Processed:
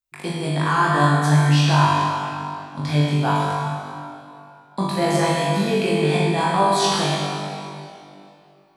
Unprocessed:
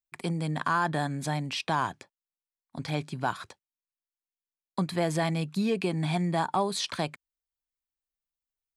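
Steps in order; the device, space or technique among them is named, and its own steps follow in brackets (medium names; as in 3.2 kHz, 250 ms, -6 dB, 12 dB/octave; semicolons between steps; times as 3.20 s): tunnel (flutter echo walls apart 3.5 m, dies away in 0.6 s; reverberation RT60 2.8 s, pre-delay 17 ms, DRR -2 dB); trim +2.5 dB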